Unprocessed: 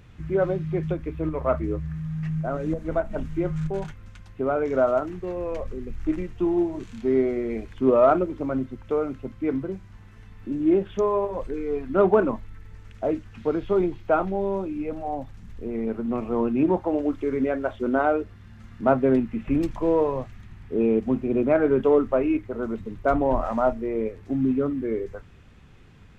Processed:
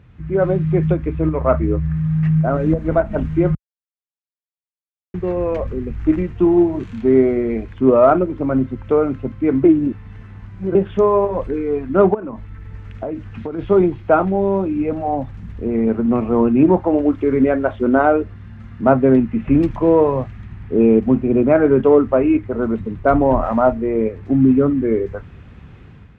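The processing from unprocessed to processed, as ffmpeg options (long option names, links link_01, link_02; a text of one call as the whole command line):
ffmpeg -i in.wav -filter_complex "[0:a]asplit=3[link_01][link_02][link_03];[link_01]afade=type=out:start_time=12.13:duration=0.02[link_04];[link_02]acompressor=threshold=-30dB:ratio=20:attack=3.2:release=140:knee=1:detection=peak,afade=type=in:start_time=12.13:duration=0.02,afade=type=out:start_time=13.58:duration=0.02[link_05];[link_03]afade=type=in:start_time=13.58:duration=0.02[link_06];[link_04][link_05][link_06]amix=inputs=3:normalize=0,asplit=5[link_07][link_08][link_09][link_10][link_11];[link_07]atrim=end=3.55,asetpts=PTS-STARTPTS,afade=type=out:start_time=3.546:duration=0.004:curve=hsin[link_12];[link_08]atrim=start=3.55:end=5.14,asetpts=PTS-STARTPTS,volume=0[link_13];[link_09]atrim=start=5.14:end=9.642,asetpts=PTS-STARTPTS,afade=type=in:duration=0.004:curve=hsin[link_14];[link_10]atrim=start=9.638:end=10.752,asetpts=PTS-STARTPTS,areverse[link_15];[link_11]atrim=start=10.748[link_16];[link_12][link_13][link_14]concat=n=3:v=0:a=1[link_17];[link_17][link_15]acrossfade=duration=0.004:curve1=hsin:curve2=hsin[link_18];[link_18][link_16]acrossfade=duration=0.004:curve1=hsin:curve2=hsin,highpass=45,bass=frequency=250:gain=4,treble=frequency=4000:gain=-14,dynaudnorm=framelen=110:gausssize=7:maxgain=9dB" out.wav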